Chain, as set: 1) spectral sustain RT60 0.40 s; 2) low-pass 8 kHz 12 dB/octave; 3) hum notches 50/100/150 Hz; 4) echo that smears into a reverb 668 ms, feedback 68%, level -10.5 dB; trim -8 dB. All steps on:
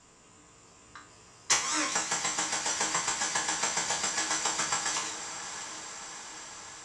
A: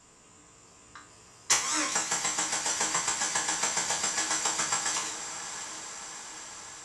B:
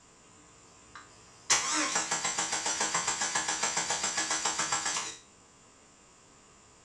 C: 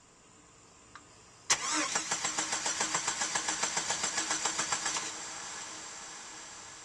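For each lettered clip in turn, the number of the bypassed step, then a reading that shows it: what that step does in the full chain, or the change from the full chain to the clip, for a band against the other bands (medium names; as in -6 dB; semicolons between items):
2, 8 kHz band +2.0 dB; 4, echo-to-direct -8.0 dB to none; 1, loudness change -2.5 LU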